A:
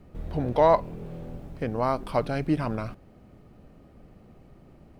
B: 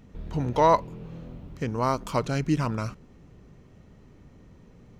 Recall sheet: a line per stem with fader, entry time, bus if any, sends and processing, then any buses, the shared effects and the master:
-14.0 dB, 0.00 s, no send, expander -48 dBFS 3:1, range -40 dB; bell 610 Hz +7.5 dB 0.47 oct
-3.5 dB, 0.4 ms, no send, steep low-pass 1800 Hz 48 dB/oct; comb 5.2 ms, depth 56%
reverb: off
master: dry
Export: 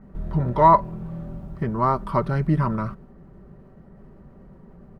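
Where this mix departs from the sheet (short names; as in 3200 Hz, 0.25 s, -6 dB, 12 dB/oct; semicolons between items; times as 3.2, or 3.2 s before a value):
stem A -14.0 dB -> -5.5 dB; stem B -3.5 dB -> +3.5 dB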